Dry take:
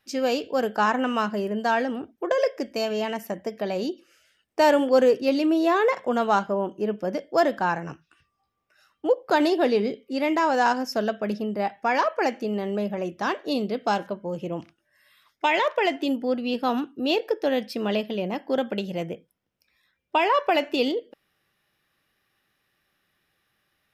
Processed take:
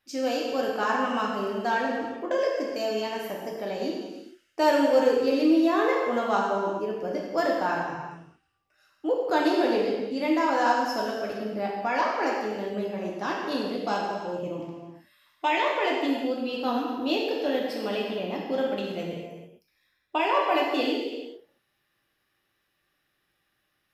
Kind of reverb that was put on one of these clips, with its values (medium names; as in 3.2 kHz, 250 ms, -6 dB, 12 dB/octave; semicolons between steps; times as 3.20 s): gated-style reverb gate 470 ms falling, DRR -2.5 dB; trim -6.5 dB